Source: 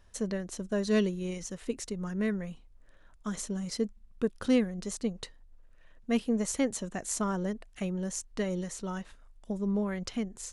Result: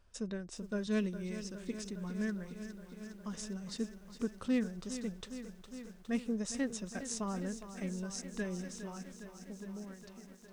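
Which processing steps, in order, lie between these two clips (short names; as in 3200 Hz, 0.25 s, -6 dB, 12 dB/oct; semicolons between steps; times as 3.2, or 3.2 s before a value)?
ending faded out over 2.06 s; formant shift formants -2 st; lo-fi delay 0.41 s, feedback 80%, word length 9-bit, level -11.5 dB; gain -6.5 dB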